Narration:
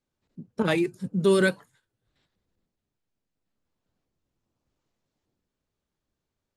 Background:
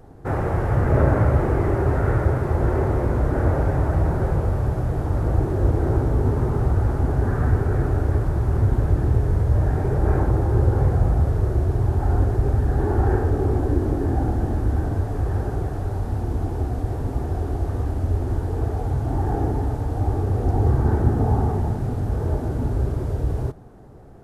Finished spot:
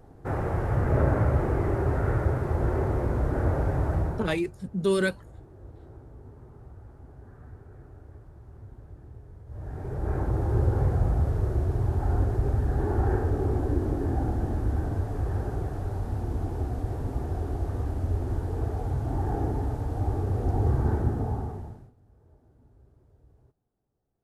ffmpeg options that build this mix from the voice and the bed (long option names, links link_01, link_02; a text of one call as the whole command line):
ffmpeg -i stem1.wav -i stem2.wav -filter_complex "[0:a]adelay=3600,volume=-3.5dB[link_01];[1:a]volume=16dB,afade=type=out:start_time=3.94:duration=0.47:silence=0.0841395,afade=type=in:start_time=9.46:duration=1.07:silence=0.0841395,afade=type=out:start_time=20.87:duration=1.05:silence=0.0316228[link_02];[link_01][link_02]amix=inputs=2:normalize=0" out.wav